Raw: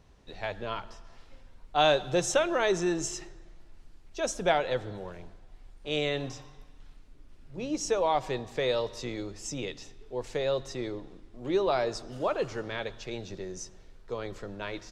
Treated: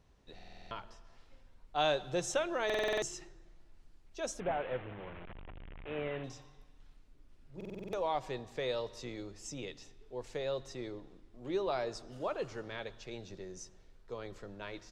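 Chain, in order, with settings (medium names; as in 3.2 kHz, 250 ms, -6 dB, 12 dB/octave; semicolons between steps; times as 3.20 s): 4.40–6.24 s: one-bit delta coder 16 kbps, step -33.5 dBFS; buffer glitch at 0.34/2.65/7.56 s, samples 2048, times 7; trim -7.5 dB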